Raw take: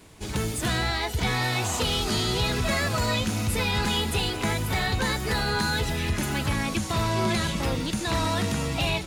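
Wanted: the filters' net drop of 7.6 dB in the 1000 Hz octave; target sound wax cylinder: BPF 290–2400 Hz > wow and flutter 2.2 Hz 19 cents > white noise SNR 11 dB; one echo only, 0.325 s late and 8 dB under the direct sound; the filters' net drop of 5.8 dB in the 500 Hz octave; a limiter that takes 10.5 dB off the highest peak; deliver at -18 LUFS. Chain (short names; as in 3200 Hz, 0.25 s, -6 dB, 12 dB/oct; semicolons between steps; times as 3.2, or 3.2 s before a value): bell 500 Hz -4.5 dB; bell 1000 Hz -8 dB; limiter -27 dBFS; BPF 290–2400 Hz; echo 0.325 s -8 dB; wow and flutter 2.2 Hz 19 cents; white noise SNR 11 dB; gain +21.5 dB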